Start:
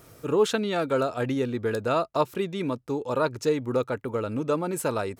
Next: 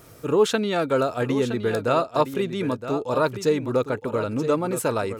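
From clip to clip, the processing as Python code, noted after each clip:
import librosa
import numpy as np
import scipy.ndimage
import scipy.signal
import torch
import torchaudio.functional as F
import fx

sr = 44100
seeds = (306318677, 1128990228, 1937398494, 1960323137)

y = x + 10.0 ** (-10.5 / 20.0) * np.pad(x, (int(967 * sr / 1000.0), 0))[:len(x)]
y = F.gain(torch.from_numpy(y), 3.0).numpy()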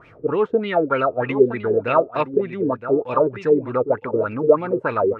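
y = fx.filter_lfo_lowpass(x, sr, shape='sine', hz=3.3, low_hz=370.0, high_hz=2600.0, q=5.6)
y = F.gain(torch.from_numpy(y), -2.0).numpy()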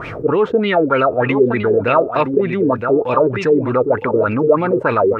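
y = fx.env_flatten(x, sr, amount_pct=50)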